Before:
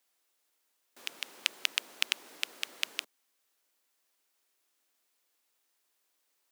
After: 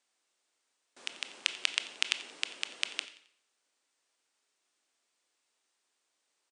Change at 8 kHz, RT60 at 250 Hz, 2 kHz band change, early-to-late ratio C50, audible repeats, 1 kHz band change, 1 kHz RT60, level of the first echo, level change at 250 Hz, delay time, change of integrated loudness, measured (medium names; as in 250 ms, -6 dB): 0.0 dB, 0.65 s, +0.5 dB, 13.0 dB, 2, +0.5 dB, 0.65 s, -20.0 dB, +0.5 dB, 89 ms, +0.5 dB